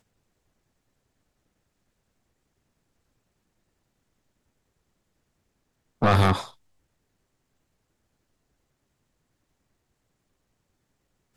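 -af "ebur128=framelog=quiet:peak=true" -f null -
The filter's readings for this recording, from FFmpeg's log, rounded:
Integrated loudness:
  I:         -22.6 LUFS
  Threshold: -33.7 LUFS
Loudness range:
  LRA:         3.8 LU
  Threshold: -49.6 LUFS
  LRA low:   -32.7 LUFS
  LRA high:  -28.9 LUFS
True peak:
  Peak:      -13.0 dBFS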